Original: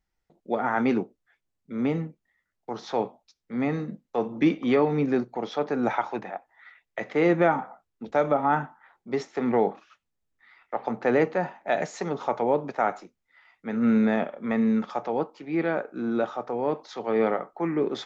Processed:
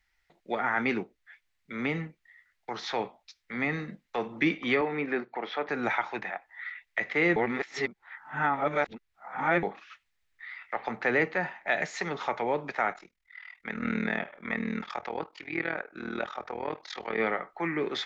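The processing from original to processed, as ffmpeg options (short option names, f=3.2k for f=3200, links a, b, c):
-filter_complex "[0:a]asettb=1/sr,asplit=3[a][b][c];[a]atrim=end=4.814[d];[b]atrim=start=4.81:end=5.69,asetpts=PTS-STARTPTS,afade=t=in:d=0.004:c=qsin,afade=t=out:st=0.876:d=0.004:c=qsin,highpass=240,lowpass=2.6k[e];[c]atrim=start=5.686[f];[d][e]acrossfade=d=0.004:c1=hsin:c2=qsin[g];[g][f]acrossfade=d=0.004:c1=qsin:c2=hsin,asplit=3[h][i][j];[h]afade=t=out:st=12.92:d=0.02[k];[i]tremolo=f=40:d=0.889,afade=t=in:st=12.92:d=0.02,afade=t=out:st=17.18:d=0.02[l];[j]afade=t=in:st=17.18:d=0.02[m];[k][l][m]amix=inputs=3:normalize=0,asplit=3[n][o][p];[n]atrim=end=7.362[q];[o]atrim=start=7.358:end=9.632,asetpts=PTS-STARTPTS,areverse[r];[p]atrim=start=9.628[s];[q][r]acrossfade=d=0.004:c1=hsin:c2=hsin[t];[t][s]acrossfade=d=0.004:c1=hsin:c2=hsin,equalizer=f=125:t=o:w=1:g=-7,equalizer=f=250:t=o:w=1:g=-9,equalizer=f=500:t=o:w=1:g=-5,equalizer=f=2k:t=o:w=1:g=12,equalizer=f=4k:t=o:w=1:g=5,acrossover=split=460[u][v];[v]acompressor=threshold=-46dB:ratio=1.5[w];[u][w]amix=inputs=2:normalize=0,volume=3.5dB"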